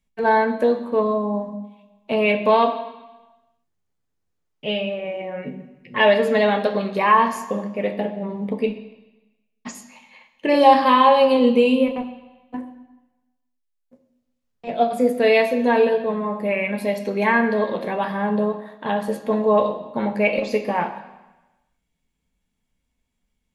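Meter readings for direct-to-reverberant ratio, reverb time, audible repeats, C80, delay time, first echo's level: 4.5 dB, 1.1 s, none, 12.0 dB, none, none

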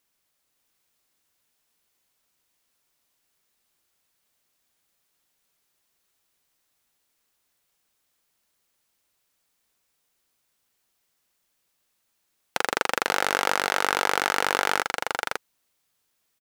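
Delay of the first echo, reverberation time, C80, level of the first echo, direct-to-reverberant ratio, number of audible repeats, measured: 0.518 s, none, none, -11.5 dB, none, 2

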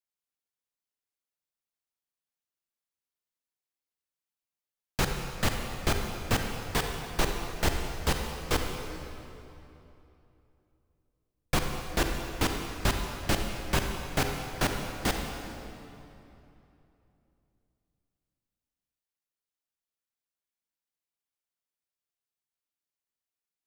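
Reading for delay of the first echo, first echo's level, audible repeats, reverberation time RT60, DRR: none, none, none, 3.0 s, 3.0 dB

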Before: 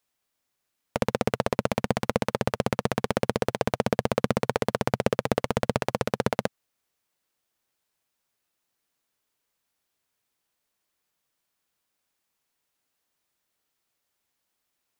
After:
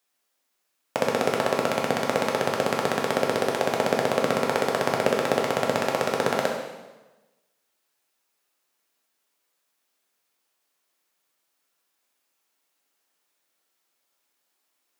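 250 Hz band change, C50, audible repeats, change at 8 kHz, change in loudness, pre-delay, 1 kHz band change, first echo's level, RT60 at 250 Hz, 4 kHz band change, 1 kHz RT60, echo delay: -0.5 dB, 3.5 dB, none, +4.5 dB, +3.0 dB, 6 ms, +4.0 dB, none, 1.2 s, +4.5 dB, 1.1 s, none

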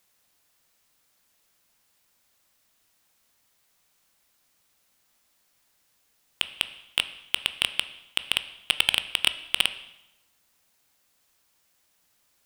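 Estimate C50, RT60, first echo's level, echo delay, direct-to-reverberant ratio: 14.0 dB, 0.90 s, none, none, 11.0 dB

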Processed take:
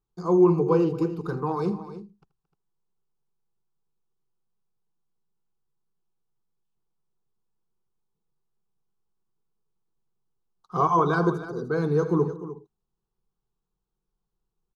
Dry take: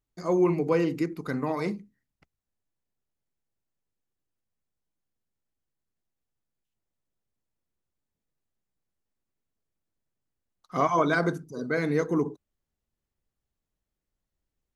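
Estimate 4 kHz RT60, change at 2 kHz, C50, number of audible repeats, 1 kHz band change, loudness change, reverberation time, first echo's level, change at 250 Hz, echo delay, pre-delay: none, -4.0 dB, none, 3, +4.0 dB, +3.0 dB, none, -17.5 dB, +3.0 dB, 80 ms, none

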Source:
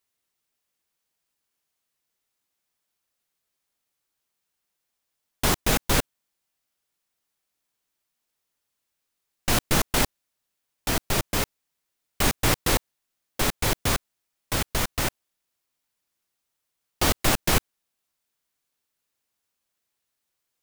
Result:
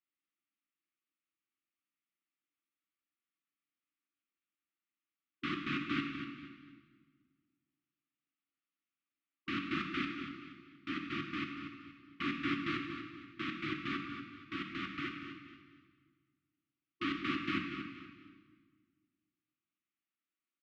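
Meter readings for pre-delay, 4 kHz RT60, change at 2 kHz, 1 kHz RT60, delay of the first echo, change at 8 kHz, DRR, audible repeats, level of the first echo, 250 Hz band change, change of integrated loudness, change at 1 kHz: 12 ms, 1.5 s, -9.5 dB, 1.6 s, 0.237 s, under -35 dB, 2.0 dB, 3, -10.0 dB, -6.0 dB, -14.0 dB, -13.0 dB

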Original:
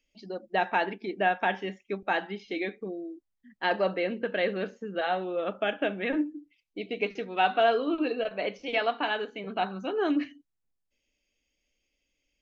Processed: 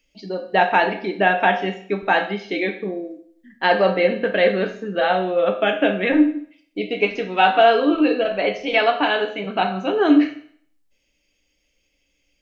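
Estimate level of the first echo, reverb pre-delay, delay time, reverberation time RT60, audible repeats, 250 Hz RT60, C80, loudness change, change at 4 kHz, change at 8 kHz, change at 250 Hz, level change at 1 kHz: none, 7 ms, none, 0.60 s, none, 0.60 s, 13.5 dB, +10.5 dB, +9.5 dB, n/a, +12.0 dB, +9.5 dB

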